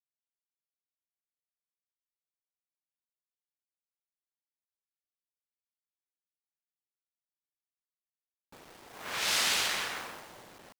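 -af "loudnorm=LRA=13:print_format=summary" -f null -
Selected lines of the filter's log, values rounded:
Input Integrated:    -29.2 LUFS
Input True Peak:     -15.2 dBTP
Input LRA:             0.1 LU
Input Threshold:     -42.2 LUFS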